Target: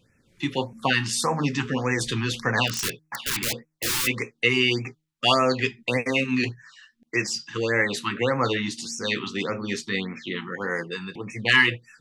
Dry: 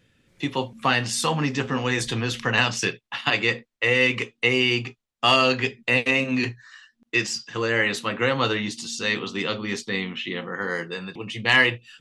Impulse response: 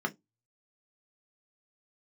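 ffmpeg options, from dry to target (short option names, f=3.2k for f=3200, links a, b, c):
-filter_complex "[0:a]bandreject=f=156.2:t=h:w=4,bandreject=f=312.4:t=h:w=4,asplit=3[a][b][c];[a]afade=t=out:st=2.67:d=0.02[d];[b]aeval=exprs='(mod(10*val(0)+1,2)-1)/10':c=same,afade=t=in:st=2.67:d=0.02,afade=t=out:st=4.06:d=0.02[e];[c]afade=t=in:st=4.06:d=0.02[f];[d][e][f]amix=inputs=3:normalize=0,afftfilt=real='re*(1-between(b*sr/1024,540*pow(3800/540,0.5+0.5*sin(2*PI*1.7*pts/sr))/1.41,540*pow(3800/540,0.5+0.5*sin(2*PI*1.7*pts/sr))*1.41))':imag='im*(1-between(b*sr/1024,540*pow(3800/540,0.5+0.5*sin(2*PI*1.7*pts/sr))/1.41,540*pow(3800/540,0.5+0.5*sin(2*PI*1.7*pts/sr))*1.41))':win_size=1024:overlap=0.75"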